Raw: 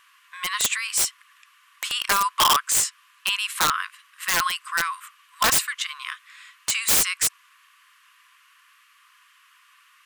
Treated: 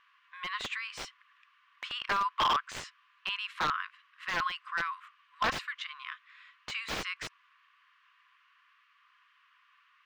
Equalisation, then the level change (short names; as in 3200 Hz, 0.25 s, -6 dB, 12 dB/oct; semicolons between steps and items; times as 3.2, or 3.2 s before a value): air absorption 250 m; -6.0 dB